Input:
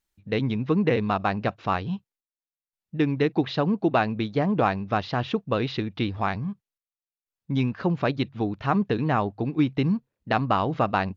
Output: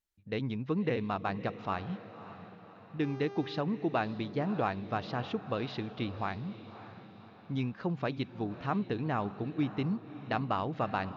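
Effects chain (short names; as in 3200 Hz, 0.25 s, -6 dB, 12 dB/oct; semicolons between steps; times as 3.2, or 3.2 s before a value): 3.02–3.6 buzz 400 Hz, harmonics 16, -36 dBFS -9 dB/oct; diffused feedback echo 0.581 s, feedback 50%, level -13.5 dB; gain -9 dB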